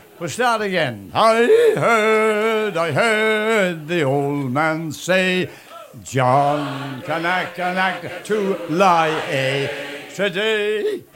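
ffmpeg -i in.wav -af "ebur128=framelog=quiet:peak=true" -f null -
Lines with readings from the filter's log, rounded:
Integrated loudness:
  I:         -18.4 LUFS
  Threshold: -28.6 LUFS
Loudness range:
  LRA:         4.1 LU
  Threshold: -38.7 LUFS
  LRA low:   -20.4 LUFS
  LRA high:  -16.4 LUFS
True peak:
  Peak:       -1.9 dBFS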